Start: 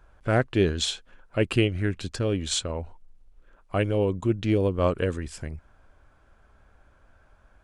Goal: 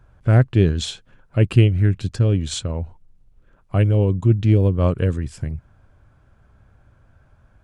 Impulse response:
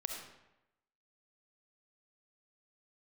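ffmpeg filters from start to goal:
-af "equalizer=f=120:w=0.8:g=14.5,volume=-1dB"

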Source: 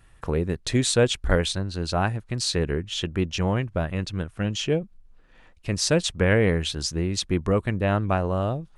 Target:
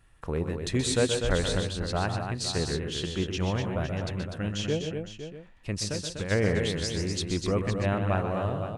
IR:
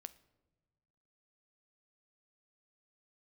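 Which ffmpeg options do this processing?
-filter_complex "[0:a]asplit=3[a][b][c];[a]afade=t=out:st=5.82:d=0.02[d];[b]acompressor=threshold=-26dB:ratio=6,afade=t=in:st=5.82:d=0.02,afade=t=out:st=6.3:d=0.02[e];[c]afade=t=in:st=6.3:d=0.02[f];[d][e][f]amix=inputs=3:normalize=0,aecho=1:1:126|145|247|511|638:0.376|0.282|0.473|0.266|0.15,volume=-5.5dB"

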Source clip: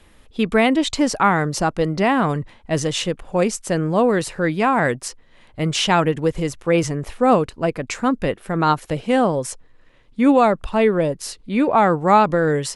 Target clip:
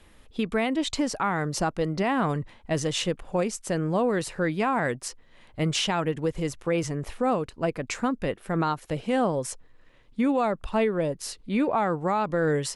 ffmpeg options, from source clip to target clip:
-af "alimiter=limit=-12.5dB:level=0:latency=1:release=404,volume=-3.5dB"

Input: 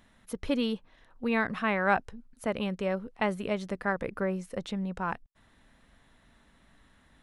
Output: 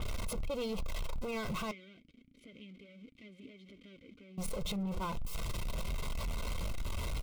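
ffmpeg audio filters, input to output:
-filter_complex "[0:a]aeval=exprs='val(0)+0.5*0.0266*sgn(val(0))':c=same,lowshelf=f=180:g=10.5,bandreject=f=60:t=h:w=6,bandreject=f=120:t=h:w=6,bandreject=f=180:t=h:w=6,bandreject=f=240:t=h:w=6,aecho=1:1:1.9:0.73,acompressor=threshold=-25dB:ratio=6,alimiter=level_in=0.5dB:limit=-24dB:level=0:latency=1:release=88,volume=-0.5dB,acontrast=80,volume=24.5dB,asoftclip=hard,volume=-24.5dB,asettb=1/sr,asplit=3[a][b][c];[a]atrim=end=1.714[d];[b]atrim=start=1.71:end=4.38,asetpts=PTS-STARTPTS,afade=t=in:d=0.004:c=qsin,afade=t=out:st=2.666:d=0.004:c=qsin,asplit=3[e][f][g];[e]bandpass=f=270:t=q:w=8,volume=0dB[h];[f]bandpass=f=2.29k:t=q:w=8,volume=-6dB[i];[g]bandpass=f=3.01k:t=q:w=8,volume=-9dB[j];[h][i][j]amix=inputs=3:normalize=0[k];[c]atrim=start=4.376[l];[d][k]acrossfade=d=0.004:c1=hsin:c2=qsin[m];[m][l]acrossfade=d=0.004:c1=qsin:c2=hsin,flanger=delay=2.8:depth=3.3:regen=-66:speed=0.28:shape=triangular,asuperstop=centerf=1700:order=4:qfactor=3.1,adynamicequalizer=threshold=0.00398:dfrequency=4900:dqfactor=0.7:tfrequency=4900:tqfactor=0.7:attack=5:release=100:ratio=0.375:range=1.5:mode=cutabove:tftype=highshelf,volume=-4.5dB"

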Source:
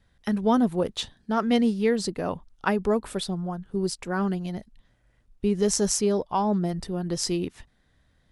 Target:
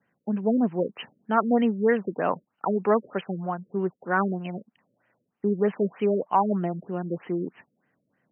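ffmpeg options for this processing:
-filter_complex "[0:a]highpass=f=160:w=0.5412,highpass=f=160:w=1.3066,acrossover=split=630[a][b];[b]dynaudnorm=f=240:g=11:m=11.5dB[c];[a][c]amix=inputs=2:normalize=0,afftfilt=real='re*lt(b*sr/1024,560*pow(3200/560,0.5+0.5*sin(2*PI*3.2*pts/sr)))':imag='im*lt(b*sr/1024,560*pow(3200/560,0.5+0.5*sin(2*PI*3.2*pts/sr)))':win_size=1024:overlap=0.75,volume=-1dB"

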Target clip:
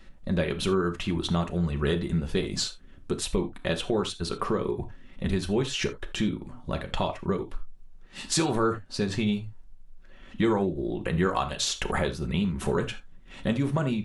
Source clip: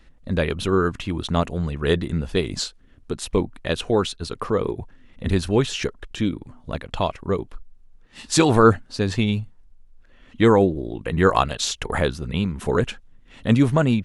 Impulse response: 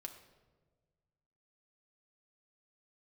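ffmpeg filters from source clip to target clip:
-filter_complex "[0:a]acompressor=threshold=-27dB:ratio=3[a];[1:a]atrim=start_sample=2205,atrim=end_sample=3969[b];[a][b]afir=irnorm=-1:irlink=0,volume=6.5dB"

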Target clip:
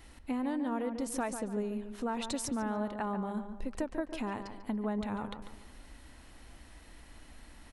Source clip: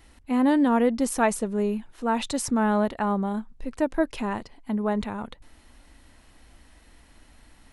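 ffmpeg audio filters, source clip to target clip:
-filter_complex "[0:a]acompressor=threshold=-33dB:ratio=5,asplit=2[a][b];[b]adelay=144,lowpass=f=2.3k:p=1,volume=-8dB,asplit=2[c][d];[d]adelay=144,lowpass=f=2.3k:p=1,volume=0.42,asplit=2[e][f];[f]adelay=144,lowpass=f=2.3k:p=1,volume=0.42,asplit=2[g][h];[h]adelay=144,lowpass=f=2.3k:p=1,volume=0.42,asplit=2[i][j];[j]adelay=144,lowpass=f=2.3k:p=1,volume=0.42[k];[c][e][g][i][k]amix=inputs=5:normalize=0[l];[a][l]amix=inputs=2:normalize=0"

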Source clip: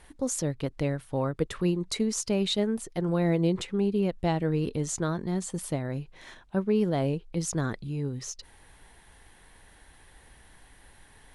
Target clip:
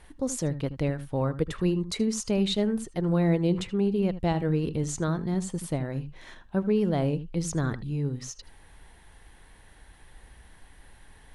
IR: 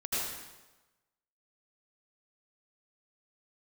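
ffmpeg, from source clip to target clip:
-filter_complex "[0:a]asplit=2[a][b];[b]lowshelf=f=250:g=10[c];[1:a]atrim=start_sample=2205,atrim=end_sample=3528,lowpass=6k[d];[c][d]afir=irnorm=-1:irlink=0,volume=-8dB[e];[a][e]amix=inputs=2:normalize=0,volume=-2dB"

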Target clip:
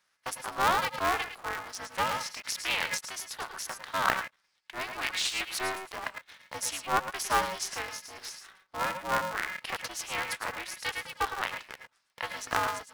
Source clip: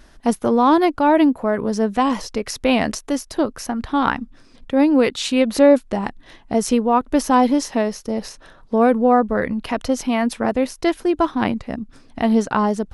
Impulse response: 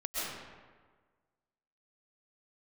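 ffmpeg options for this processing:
-filter_complex "[0:a]highpass=f=1k:w=0.5412,highpass=f=1k:w=1.3066,agate=range=-13dB:threshold=-48dB:ratio=16:detection=peak[a];[1:a]atrim=start_sample=2205,afade=t=out:st=0.16:d=0.01,atrim=end_sample=7497[b];[a][b]afir=irnorm=-1:irlink=0,aeval=exprs='val(0)*sgn(sin(2*PI*190*n/s))':c=same,volume=-1.5dB"

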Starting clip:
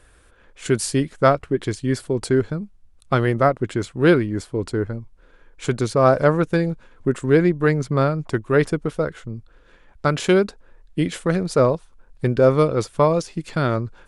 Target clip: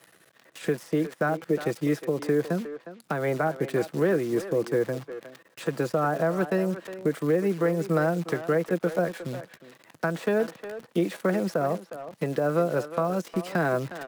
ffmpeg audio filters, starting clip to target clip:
-filter_complex "[0:a]acrossover=split=230|880|1600[a][b][c][d];[d]acompressor=threshold=-45dB:ratio=6[e];[a][b][c][e]amix=inputs=4:normalize=0,aecho=1:1:6.8:0.36,acrossover=split=290|7000[f][g][h];[f]acompressor=threshold=-29dB:ratio=4[i];[g]acompressor=threshold=-22dB:ratio=4[j];[h]acompressor=threshold=-57dB:ratio=4[k];[i][j][k]amix=inputs=3:normalize=0,acrusher=bits=8:dc=4:mix=0:aa=0.000001,alimiter=limit=-15dB:level=0:latency=1:release=228,highpass=f=130:w=0.5412,highpass=f=130:w=1.3066,asetrate=49501,aresample=44100,atempo=0.890899,asplit=2[l][m];[m]adelay=360,highpass=300,lowpass=3.4k,asoftclip=type=hard:threshold=-22dB,volume=-11dB[n];[l][n]amix=inputs=2:normalize=0,volume=1.5dB"

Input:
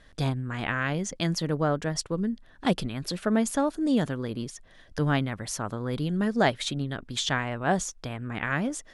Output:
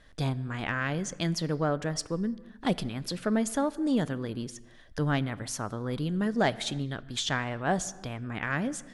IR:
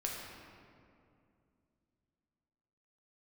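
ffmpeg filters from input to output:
-filter_complex "[0:a]asoftclip=type=tanh:threshold=-11dB,asplit=2[a][b];[1:a]atrim=start_sample=2205,afade=t=out:st=0.39:d=0.01,atrim=end_sample=17640[c];[b][c]afir=irnorm=-1:irlink=0,volume=-16dB[d];[a][d]amix=inputs=2:normalize=0,volume=-3dB"

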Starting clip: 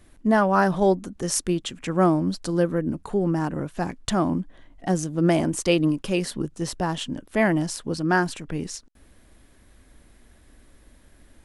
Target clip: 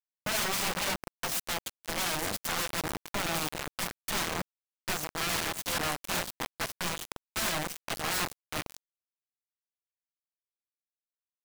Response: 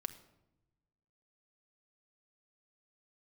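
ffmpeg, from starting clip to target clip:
-filter_complex "[0:a]aecho=1:1:6:0.79,asplit=4[a][b][c][d];[b]adelay=435,afreqshift=-77,volume=-18dB[e];[c]adelay=870,afreqshift=-154,volume=-27.4dB[f];[d]adelay=1305,afreqshift=-231,volume=-36.7dB[g];[a][e][f][g]amix=inputs=4:normalize=0,acrossover=split=390|3000[h][i][j];[h]acompressor=threshold=-19dB:ratio=10[k];[k][i][j]amix=inputs=3:normalize=0,asoftclip=type=tanh:threshold=-16.5dB,asettb=1/sr,asplit=3[l][m][n];[l]atrim=end=1.894[o];[m]atrim=start=1.89:end=4.05,asetpts=PTS-STARTPTS,afade=t=in:d=0.004:c=qsin,afade=t=out:st=2.156:d=0.004:c=qsin,highshelf=f=3.4k:g=11[p];[n]atrim=start=4.046[q];[o][p]acrossfade=d=0.004:c1=hsin:c2=qsin[r];[r][q]acrossfade=d=0.004:c1=qsin:c2=hsin,aeval=exprs='(mod(10*val(0)+1,2)-1)/10':c=same,equalizer=f=440:t=o:w=0.42:g=-5,bandreject=f=46.06:t=h:w=4,bandreject=f=92.12:t=h:w=4,bandreject=f=138.18:t=h:w=4,bandreject=f=184.24:t=h:w=4,bandreject=f=230.3:t=h:w=4,bandreject=f=276.36:t=h:w=4,bandreject=f=322.42:t=h:w=4,bandreject=f=368.48:t=h:w=4,bandreject=f=414.54:t=h:w=4,bandreject=f=460.6:t=h:w=4,bandreject=f=506.66:t=h:w=4,bandreject=f=552.72:t=h:w=4,bandreject=f=598.78:t=h:w=4,bandreject=f=644.84:t=h:w=4,bandreject=f=690.9:t=h:w=4,bandreject=f=736.96:t=h:w=4,bandreject=f=783.02:t=h:w=4,acrusher=bits=3:mix=0:aa=0.000001,volume=-8.5dB"

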